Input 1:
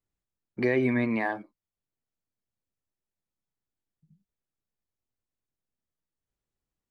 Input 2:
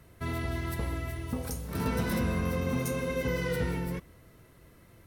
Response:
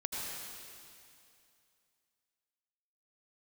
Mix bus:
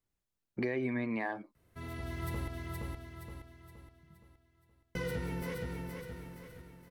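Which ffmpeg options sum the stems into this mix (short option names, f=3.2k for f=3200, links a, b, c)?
-filter_complex "[0:a]volume=1dB,asplit=2[a][b];[1:a]adelay=1550,volume=-2dB,asplit=3[c][d][e];[c]atrim=end=2.48,asetpts=PTS-STARTPTS,afade=t=out:st=2.476:d=0.004:c=hsin[f];[d]atrim=start=2.48:end=4.95,asetpts=PTS-STARTPTS,volume=0[g];[e]atrim=start=4.95,asetpts=PTS-STARTPTS,afade=t=in:d=0.004:c=hsin[h];[f][g][h]concat=n=3:v=0:a=1,asplit=2[i][j];[j]volume=-6dB[k];[b]apad=whole_len=291632[l];[i][l]sidechaincompress=threshold=-37dB:ratio=8:attack=8.2:release=1040[m];[k]aecho=0:1:470|940|1410|1880|2350|2820:1|0.43|0.185|0.0795|0.0342|0.0147[n];[a][m][n]amix=inputs=3:normalize=0,acompressor=threshold=-34dB:ratio=3"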